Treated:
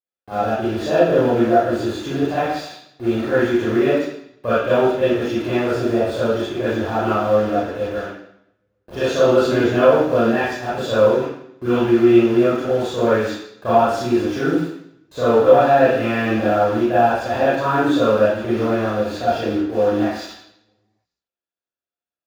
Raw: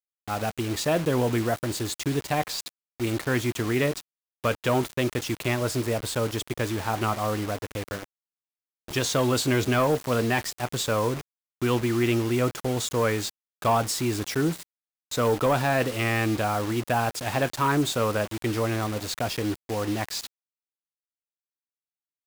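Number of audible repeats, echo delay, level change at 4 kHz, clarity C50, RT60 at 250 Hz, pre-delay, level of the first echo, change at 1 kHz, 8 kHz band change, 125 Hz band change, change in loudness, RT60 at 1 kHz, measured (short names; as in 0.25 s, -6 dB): none, none, 0.0 dB, -4.0 dB, 0.75 s, 29 ms, none, +8.0 dB, n/a, +0.5 dB, +8.5 dB, 0.75 s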